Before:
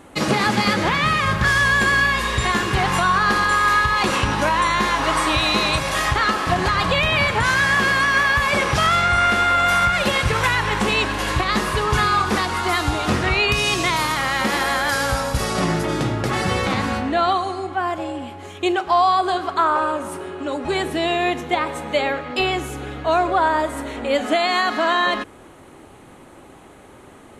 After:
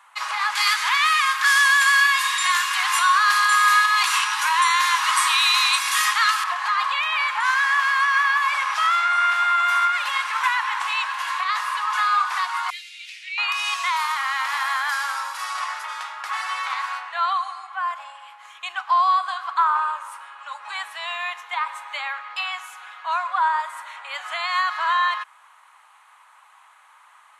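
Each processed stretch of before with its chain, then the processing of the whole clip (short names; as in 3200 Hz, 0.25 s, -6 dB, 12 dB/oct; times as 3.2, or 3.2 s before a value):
0.55–6.44 HPF 690 Hz + tilt +4.5 dB/oct
12.7–13.38 elliptic high-pass 2300 Hz, stop band 50 dB + high shelf 4700 Hz -9 dB
whole clip: elliptic high-pass 1000 Hz, stop band 70 dB; tilt shelf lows +7 dB, about 1300 Hz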